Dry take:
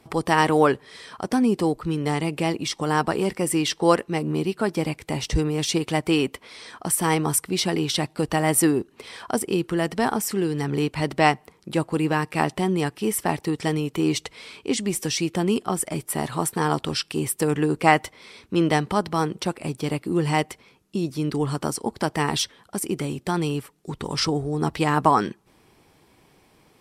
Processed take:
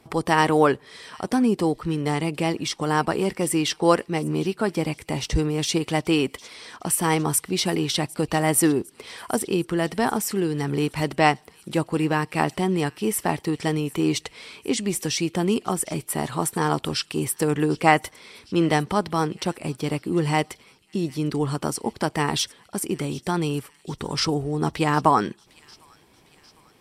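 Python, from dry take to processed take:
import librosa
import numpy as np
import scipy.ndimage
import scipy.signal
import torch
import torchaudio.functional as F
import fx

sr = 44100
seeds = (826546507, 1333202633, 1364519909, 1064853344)

y = fx.echo_wet_highpass(x, sr, ms=754, feedback_pct=55, hz=2700.0, wet_db=-19.0)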